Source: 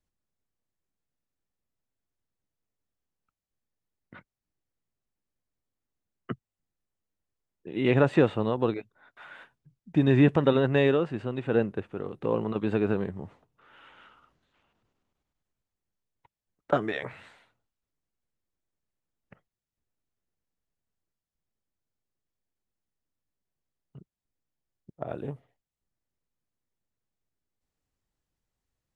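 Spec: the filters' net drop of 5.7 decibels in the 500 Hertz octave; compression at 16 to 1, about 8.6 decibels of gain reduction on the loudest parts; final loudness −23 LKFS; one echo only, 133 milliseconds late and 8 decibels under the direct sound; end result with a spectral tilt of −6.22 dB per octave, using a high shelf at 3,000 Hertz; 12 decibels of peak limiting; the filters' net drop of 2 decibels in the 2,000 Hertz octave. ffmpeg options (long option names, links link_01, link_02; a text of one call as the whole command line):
ffmpeg -i in.wav -af "equalizer=frequency=500:width_type=o:gain=-7,equalizer=frequency=2000:width_type=o:gain=-3.5,highshelf=frequency=3000:gain=3.5,acompressor=threshold=-25dB:ratio=16,alimiter=level_in=4dB:limit=-24dB:level=0:latency=1,volume=-4dB,aecho=1:1:133:0.398,volume=16.5dB" out.wav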